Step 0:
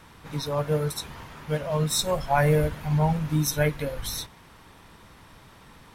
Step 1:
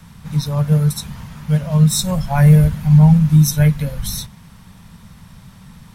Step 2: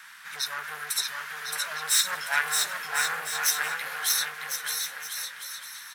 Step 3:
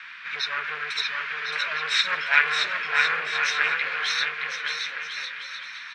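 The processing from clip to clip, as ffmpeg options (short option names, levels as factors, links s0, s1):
-filter_complex "[0:a]lowshelf=f=250:t=q:w=3:g=9,acrossover=split=130|1100|4500[s0][s1][s2][s3];[s3]acontrast=70[s4];[s0][s1][s2][s4]amix=inputs=4:normalize=0,volume=1.12"
-filter_complex "[0:a]asoftclip=type=hard:threshold=0.119,highpass=f=1600:t=q:w=3.5,asplit=2[s0][s1];[s1]aecho=0:1:620|1054|1358|1570|1719:0.631|0.398|0.251|0.158|0.1[s2];[s0][s2]amix=inputs=2:normalize=0"
-af "highpass=150,equalizer=f=400:t=q:w=4:g=4,equalizer=f=800:t=q:w=4:g=-10,equalizer=f=2400:t=q:w=4:g=9,lowpass=f=4100:w=0.5412,lowpass=f=4100:w=1.3066,volume=1.78"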